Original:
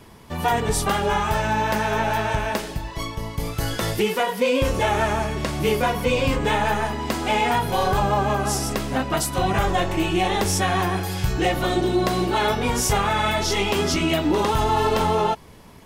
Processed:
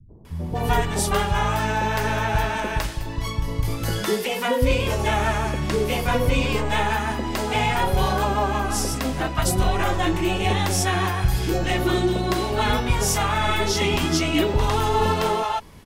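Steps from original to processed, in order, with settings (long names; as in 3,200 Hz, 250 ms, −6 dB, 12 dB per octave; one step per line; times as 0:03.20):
low-shelf EQ 150 Hz +5 dB
three-band delay without the direct sound lows, mids, highs 90/250 ms, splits 180/630 Hz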